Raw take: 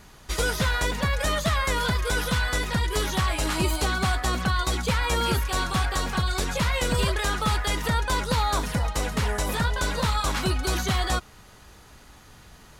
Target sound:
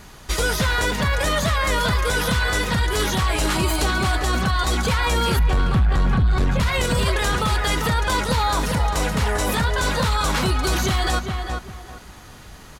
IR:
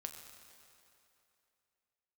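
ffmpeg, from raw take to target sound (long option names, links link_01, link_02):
-filter_complex "[0:a]asettb=1/sr,asplit=3[link_01][link_02][link_03];[link_01]atrim=end=5.394[link_04];[link_02]atrim=start=5.39:end=6.6,asetpts=PTS-STARTPTS,afade=type=in:duration=0.004:curve=qsin,afade=type=out:start_time=1.206:duration=0.004:curve=qsin,bass=frequency=250:gain=13,treble=frequency=4000:gain=-13[link_05];[link_03]atrim=start=6.596[link_06];[link_04][link_05]acrossfade=duration=0.004:curve1=hsin:curve2=qsin[link_07];[link_07][link_06]acrossfade=duration=0.004:curve1=qsin:curve2=hsin,asoftclip=type=tanh:threshold=-12dB,asplit=2[link_08][link_09];[link_09]adelay=397,lowpass=frequency=2400:poles=1,volume=-7.5dB,asplit=2[link_10][link_11];[link_11]adelay=397,lowpass=frequency=2400:poles=1,volume=0.28,asplit=2[link_12][link_13];[link_13]adelay=397,lowpass=frequency=2400:poles=1,volume=0.28[link_14];[link_10][link_12][link_14]amix=inputs=3:normalize=0[link_15];[link_08][link_15]amix=inputs=2:normalize=0,alimiter=limit=-18.5dB:level=0:latency=1:release=32,volume=6.5dB"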